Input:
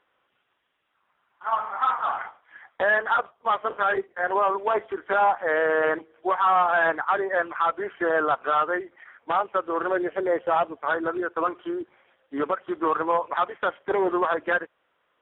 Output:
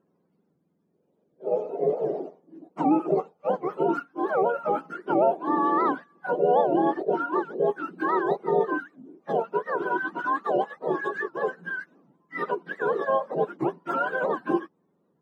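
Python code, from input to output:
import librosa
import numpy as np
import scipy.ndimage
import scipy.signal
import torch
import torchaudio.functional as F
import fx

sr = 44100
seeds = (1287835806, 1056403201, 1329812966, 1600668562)

y = fx.octave_mirror(x, sr, pivot_hz=740.0)
y = fx.highpass(y, sr, hz=230.0, slope=12, at=(10.28, 10.77))
y = fx.record_warp(y, sr, rpm=78.0, depth_cents=250.0)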